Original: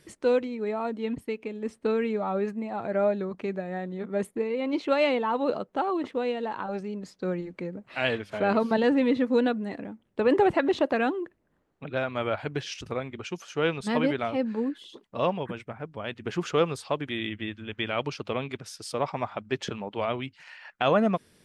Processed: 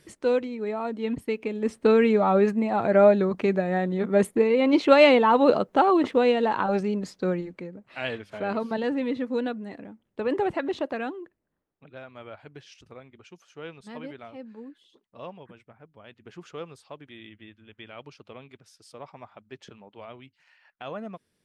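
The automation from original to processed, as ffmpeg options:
ffmpeg -i in.wav -af "volume=8dB,afade=type=in:start_time=0.87:duration=1.18:silence=0.398107,afade=type=out:start_time=6.88:duration=0.8:silence=0.237137,afade=type=out:start_time=10.76:duration=1.14:silence=0.334965" out.wav

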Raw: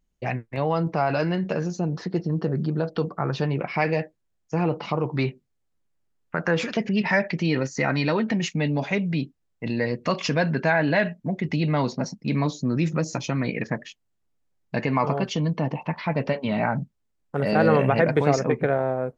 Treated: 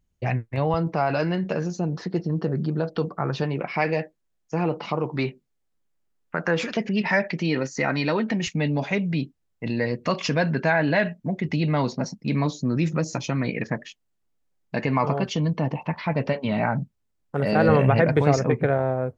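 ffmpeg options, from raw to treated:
ffmpeg -i in.wav -af "asetnsamples=nb_out_samples=441:pad=0,asendcmd='0.74 equalizer g -1;3.43 equalizer g -9;8.47 equalizer g 1.5;13.8 equalizer g -5.5;14.83 equalizer g 4;17.69 equalizer g 11.5',equalizer=frequency=96:width_type=o:width=0.77:gain=11" out.wav

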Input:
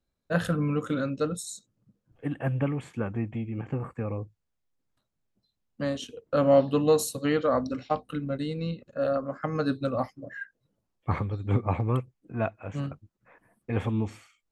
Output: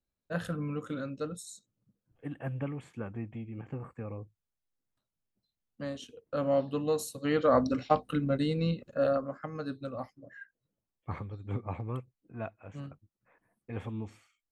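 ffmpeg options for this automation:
ffmpeg -i in.wav -af "volume=2dB,afade=type=in:start_time=7.18:duration=0.41:silence=0.316228,afade=type=out:start_time=8.86:duration=0.63:silence=0.251189" out.wav

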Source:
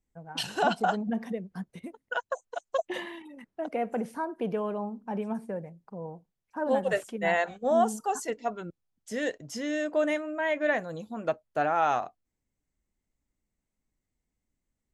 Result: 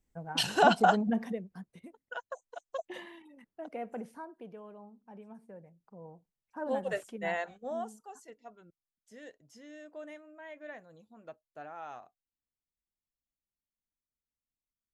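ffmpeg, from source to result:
ffmpeg -i in.wav -af "volume=14dB,afade=type=out:start_time=0.9:duration=0.71:silence=0.251189,afade=type=out:start_time=3.99:duration=0.5:silence=0.375837,afade=type=in:start_time=5.36:duration=1.28:silence=0.281838,afade=type=out:start_time=7.21:duration=0.78:silence=0.237137" out.wav

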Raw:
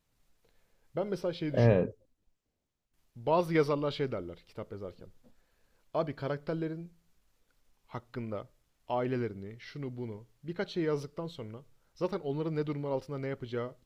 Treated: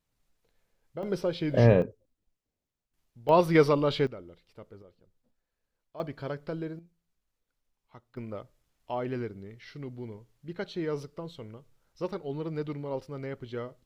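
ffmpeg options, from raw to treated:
ffmpeg -i in.wav -af "asetnsamples=nb_out_samples=441:pad=0,asendcmd='1.03 volume volume 4dB;1.82 volume volume -4dB;3.29 volume volume 6dB;4.07 volume volume -6.5dB;4.82 volume volume -13.5dB;6 volume volume -1dB;6.79 volume volume -11dB;8.17 volume volume -1dB',volume=-4dB" out.wav

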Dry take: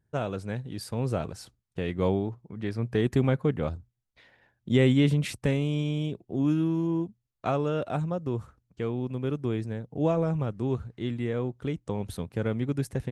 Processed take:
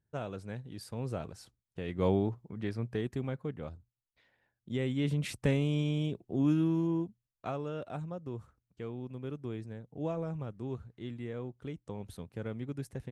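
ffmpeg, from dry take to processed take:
ffmpeg -i in.wav -af "volume=9.5dB,afade=type=in:start_time=1.84:duration=0.42:silence=0.398107,afade=type=out:start_time=2.26:duration=0.86:silence=0.251189,afade=type=in:start_time=4.93:duration=0.53:silence=0.334965,afade=type=out:start_time=6.77:duration=0.77:silence=0.421697" out.wav

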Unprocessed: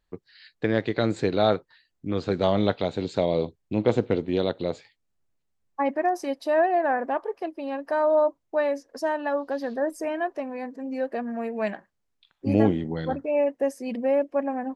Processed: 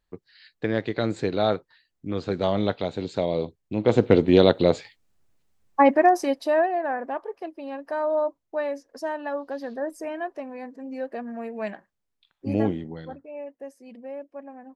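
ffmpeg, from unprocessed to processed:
ffmpeg -i in.wav -af "volume=9dB,afade=type=in:start_time=3.81:duration=0.42:silence=0.298538,afade=type=out:start_time=5.8:duration=0.94:silence=0.237137,afade=type=out:start_time=12.7:duration=0.51:silence=0.298538" out.wav

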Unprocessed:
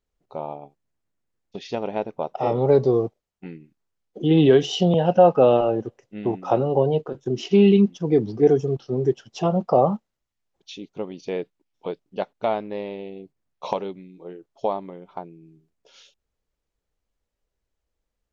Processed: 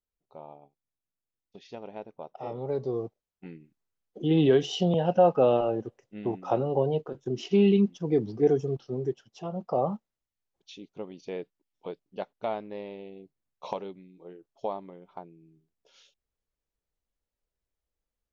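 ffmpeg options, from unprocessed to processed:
ffmpeg -i in.wav -af "volume=1dB,afade=type=in:start_time=2.75:duration=0.78:silence=0.398107,afade=type=out:start_time=8.75:duration=0.68:silence=0.354813,afade=type=in:start_time=9.43:duration=0.48:silence=0.446684" out.wav

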